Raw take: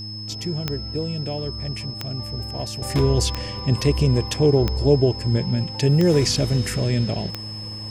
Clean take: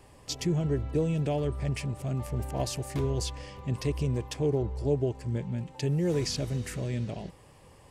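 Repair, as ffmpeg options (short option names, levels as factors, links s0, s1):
-af "adeclick=t=4,bandreject=f=106.5:t=h:w=4,bandreject=f=213:t=h:w=4,bandreject=f=319.5:t=h:w=4,bandreject=f=5200:w=30,asetnsamples=n=441:p=0,asendcmd='2.82 volume volume -10.5dB',volume=1"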